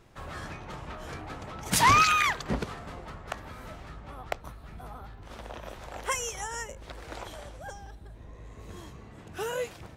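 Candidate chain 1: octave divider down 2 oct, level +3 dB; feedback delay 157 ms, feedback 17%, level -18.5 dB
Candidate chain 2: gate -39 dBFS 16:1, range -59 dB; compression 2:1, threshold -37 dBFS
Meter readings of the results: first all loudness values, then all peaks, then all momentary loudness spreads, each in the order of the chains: -28.5 LUFS, -38.0 LUFS; -7.5 dBFS, -17.5 dBFS; 22 LU, 19 LU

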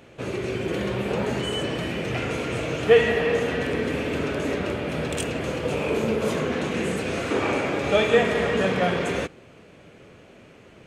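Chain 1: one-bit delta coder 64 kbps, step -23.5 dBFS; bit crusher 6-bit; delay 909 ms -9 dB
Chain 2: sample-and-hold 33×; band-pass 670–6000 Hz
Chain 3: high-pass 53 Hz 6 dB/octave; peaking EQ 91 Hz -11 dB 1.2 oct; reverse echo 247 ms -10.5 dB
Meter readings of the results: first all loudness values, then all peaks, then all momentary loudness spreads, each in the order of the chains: -24.0 LUFS, -29.0 LUFS, -25.0 LUFS; -4.5 dBFS, -1.5 dBFS, -5.5 dBFS; 8 LU, 11 LU, 9 LU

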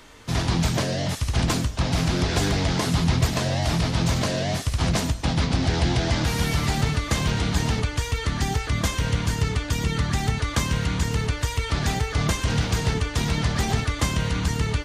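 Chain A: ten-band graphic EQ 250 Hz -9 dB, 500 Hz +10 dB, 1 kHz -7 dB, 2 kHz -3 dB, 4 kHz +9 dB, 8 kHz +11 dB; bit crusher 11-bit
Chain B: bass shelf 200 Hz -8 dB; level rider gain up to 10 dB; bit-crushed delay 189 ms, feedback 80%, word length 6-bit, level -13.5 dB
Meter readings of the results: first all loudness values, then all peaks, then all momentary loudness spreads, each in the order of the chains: -20.5 LUFS, -17.5 LUFS; -4.0 dBFS, -2.0 dBFS; 3 LU, 3 LU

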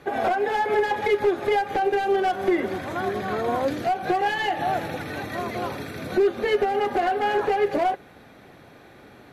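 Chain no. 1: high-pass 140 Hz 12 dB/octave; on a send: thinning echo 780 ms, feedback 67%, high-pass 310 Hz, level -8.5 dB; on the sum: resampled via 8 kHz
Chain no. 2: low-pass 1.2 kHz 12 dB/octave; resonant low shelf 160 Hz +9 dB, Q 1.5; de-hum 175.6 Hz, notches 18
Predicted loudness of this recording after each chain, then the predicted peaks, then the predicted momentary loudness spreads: -24.0 LUFS, -25.5 LUFS; -11.0 dBFS, -13.0 dBFS; 9 LU, 6 LU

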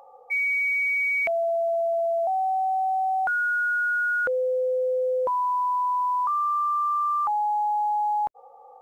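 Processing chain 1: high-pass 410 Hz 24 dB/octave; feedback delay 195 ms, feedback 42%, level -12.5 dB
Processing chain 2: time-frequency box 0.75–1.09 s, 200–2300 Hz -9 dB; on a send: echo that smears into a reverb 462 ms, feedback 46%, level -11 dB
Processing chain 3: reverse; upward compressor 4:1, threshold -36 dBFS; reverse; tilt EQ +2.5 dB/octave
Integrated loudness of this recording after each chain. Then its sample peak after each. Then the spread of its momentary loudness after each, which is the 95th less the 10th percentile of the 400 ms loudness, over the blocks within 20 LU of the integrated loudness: -24.0 LUFS, -24.0 LUFS, -23.5 LUFS; -18.5 dBFS, -17.5 dBFS, -17.5 dBFS; 7 LU, 4 LU, 8 LU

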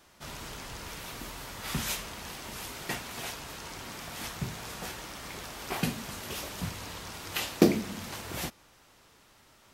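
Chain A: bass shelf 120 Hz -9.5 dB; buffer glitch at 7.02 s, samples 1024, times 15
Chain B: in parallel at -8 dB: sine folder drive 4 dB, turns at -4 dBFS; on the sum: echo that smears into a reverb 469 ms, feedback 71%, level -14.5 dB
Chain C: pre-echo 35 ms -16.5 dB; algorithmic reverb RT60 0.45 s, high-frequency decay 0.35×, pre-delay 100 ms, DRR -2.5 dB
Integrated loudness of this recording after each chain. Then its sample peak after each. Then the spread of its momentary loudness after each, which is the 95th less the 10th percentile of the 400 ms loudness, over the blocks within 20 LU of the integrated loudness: -36.0 LUFS, -29.5 LUFS, -30.5 LUFS; -6.0 dBFS, -2.0 dBFS, -4.0 dBFS; 9 LU, 11 LU, 12 LU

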